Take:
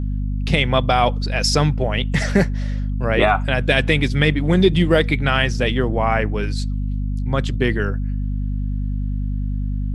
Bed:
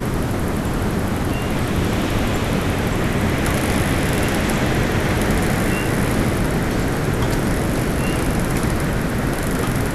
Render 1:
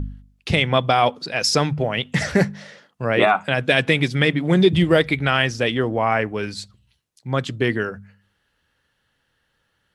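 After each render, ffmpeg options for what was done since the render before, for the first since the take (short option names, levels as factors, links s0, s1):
-af "bandreject=f=50:t=h:w=4,bandreject=f=100:t=h:w=4,bandreject=f=150:t=h:w=4,bandreject=f=200:t=h:w=4,bandreject=f=250:t=h:w=4"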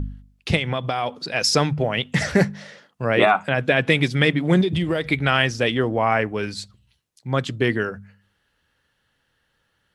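-filter_complex "[0:a]asettb=1/sr,asplit=3[s0][s1][s2];[s0]atrim=end=0.564[s3];[s1]atrim=start=0.56:end=1.22,asetpts=PTS-STARTPTS,afade=t=in:d=0.004:c=qsin,afade=t=out:st=0.656:d=0.004:c=qsin,acompressor=threshold=0.1:ratio=4:attack=3.2:release=140:knee=1:detection=peak[s4];[s2]atrim=start=1.216[s5];[s3][s4]acrossfade=d=0.004:c1=hsin:c2=qsin[s6];[s6][s5]acrossfade=d=0.004:c1=qsin:c2=hsin,asettb=1/sr,asplit=3[s7][s8][s9];[s7]atrim=end=3.464[s10];[s8]atrim=start=3.46:end=3.9,asetpts=PTS-STARTPTS,afade=t=in:d=0.004:c=qsin,afade=t=out:st=0.436:d=0.004:c=qsin,acrossover=split=2700[s11][s12];[s12]acompressor=threshold=0.0141:ratio=4:attack=1:release=60[s13];[s11][s13]amix=inputs=2:normalize=0[s14];[s9]atrim=start=3.896[s15];[s10][s14]acrossfade=d=0.004:c1=hsin:c2=qsin[s16];[s16][s15]acrossfade=d=0.004:c1=qsin:c2=hsin,asettb=1/sr,asplit=3[s17][s18][s19];[s17]atrim=end=4.614[s20];[s18]atrim=start=4.61:end=5.1,asetpts=PTS-STARTPTS,afade=t=in:d=0.004:c=qsin,afade=t=out:st=0.486:d=0.004:c=qsin,acompressor=threshold=0.126:ratio=6:attack=3.2:release=140:knee=1:detection=peak[s21];[s19]atrim=start=5.096[s22];[s20][s21]acrossfade=d=0.004:c1=hsin:c2=qsin[s23];[s23][s22]acrossfade=d=0.004:c1=qsin:c2=hsin"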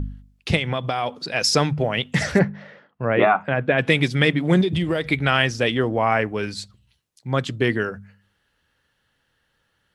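-filter_complex "[0:a]asplit=3[s0][s1][s2];[s0]afade=t=out:st=2.38:d=0.02[s3];[s1]lowpass=2100,afade=t=in:st=2.38:d=0.02,afade=t=out:st=3.77:d=0.02[s4];[s2]afade=t=in:st=3.77:d=0.02[s5];[s3][s4][s5]amix=inputs=3:normalize=0"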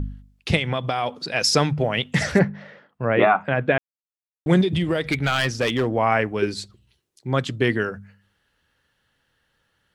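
-filter_complex "[0:a]asettb=1/sr,asplit=3[s0][s1][s2];[s0]atrim=end=5.104[s3];[s1]atrim=start=5.1:end=5.87,asetpts=PTS-STARTPTS,afade=t=in:d=0.004:c=qsin,afade=t=out:st=0.766:d=0.004:c=qsin,asoftclip=type=hard:threshold=0.168[s4];[s2]atrim=start=5.866[s5];[s3][s4]acrossfade=d=0.004:c1=hsin:c2=qsin[s6];[s6][s5]acrossfade=d=0.004:c1=qsin:c2=hsin,asettb=1/sr,asplit=3[s7][s8][s9];[s7]atrim=end=6.424[s10];[s8]atrim=start=6.42:end=7.33,asetpts=PTS-STARTPTS,afade=t=in:d=0.004:c=qsin,afade=t=out:st=0.906:d=0.004:c=qsin,equalizer=f=370:t=o:w=0.57:g=12.5[s11];[s9]atrim=start=7.326[s12];[s10][s11]acrossfade=d=0.004:c1=hsin:c2=qsin[s13];[s13][s12]acrossfade=d=0.004:c1=qsin:c2=hsin,asplit=3[s14][s15][s16];[s14]atrim=end=3.78,asetpts=PTS-STARTPTS,afade=t=out:st=3.776:d=0.004:c=hsin[s17];[s15]atrim=start=3.78:end=4.46,asetpts=PTS-STARTPTS,volume=0[s18];[s16]atrim=start=4.46,asetpts=PTS-STARTPTS,afade=t=in:d=0.004:c=hsin[s19];[s17][s18][s19]concat=n=3:v=0:a=1"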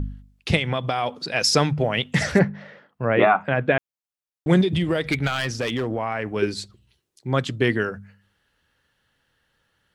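-filter_complex "[0:a]asettb=1/sr,asplit=3[s0][s1][s2];[s0]atrim=end=5.274[s3];[s1]atrim=start=5.27:end=6.36,asetpts=PTS-STARTPTS,afade=t=in:d=0.004:c=qsin,afade=t=out:st=1.086:d=0.004:c=qsin,acompressor=threshold=0.0891:ratio=6:attack=3.2:release=140:knee=1:detection=peak[s4];[s2]atrim=start=6.356[s5];[s3][s4]acrossfade=d=0.004:c1=hsin:c2=qsin[s6];[s6][s5]acrossfade=d=0.004:c1=qsin:c2=hsin"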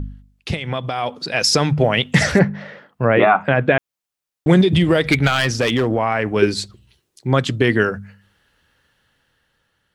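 -af "alimiter=limit=0.316:level=0:latency=1:release=145,dynaudnorm=f=560:g=5:m=2.99"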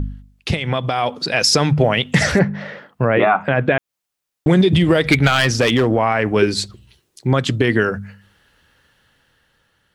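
-filter_complex "[0:a]asplit=2[s0][s1];[s1]acompressor=threshold=0.0891:ratio=6,volume=0.708[s2];[s0][s2]amix=inputs=2:normalize=0,alimiter=limit=0.631:level=0:latency=1:release=116"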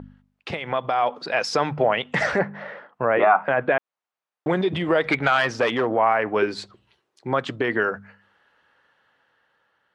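-af "bandpass=f=940:t=q:w=0.92:csg=0"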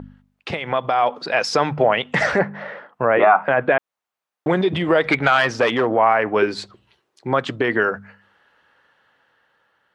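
-af "volume=1.5,alimiter=limit=0.794:level=0:latency=1"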